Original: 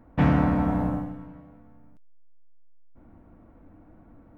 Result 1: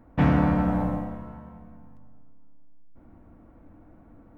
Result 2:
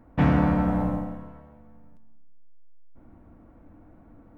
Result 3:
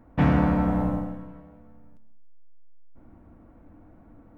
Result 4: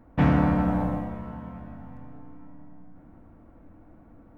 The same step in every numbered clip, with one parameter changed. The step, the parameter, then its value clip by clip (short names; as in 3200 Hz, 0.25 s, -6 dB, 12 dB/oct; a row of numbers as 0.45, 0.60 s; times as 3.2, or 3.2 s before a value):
plate-style reverb, RT60: 2.4, 1.1, 0.52, 5.2 s